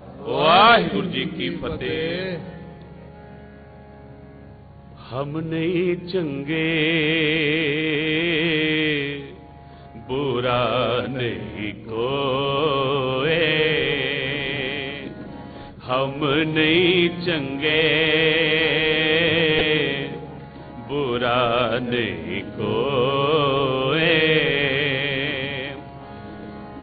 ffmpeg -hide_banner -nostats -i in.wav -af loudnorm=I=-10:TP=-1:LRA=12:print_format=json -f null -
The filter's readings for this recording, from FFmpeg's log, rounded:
"input_i" : "-20.4",
"input_tp" : "-4.6",
"input_lra" : "6.9",
"input_thresh" : "-31.4",